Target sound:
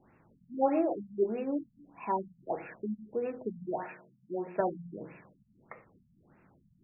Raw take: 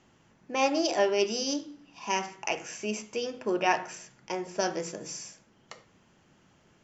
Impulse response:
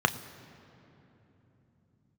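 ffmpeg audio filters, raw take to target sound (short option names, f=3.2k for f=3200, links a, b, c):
-filter_complex "[0:a]asettb=1/sr,asplit=3[a][b][c];[a]atrim=end=3.874[d];[b]atrim=start=3.87:end=4.6,asetpts=PTS-STARTPTS,afade=t=in:d=0.004:c=qsin,afade=t=out:st=0.726:d=0.004:c=qsin,highpass=150[e];[c]atrim=start=4.596[f];[d][e]acrossfade=d=0.004:c1=hsin:c2=qsin[g];[g][f]acrossfade=d=0.004:c1=qsin:c2=hsin,afftfilt=real='re*lt(b*sr/1024,210*pow(2800/210,0.5+0.5*sin(2*PI*1.6*pts/sr)))':imag='im*lt(b*sr/1024,210*pow(2800/210,0.5+0.5*sin(2*PI*1.6*pts/sr)))':win_size=1024:overlap=0.75"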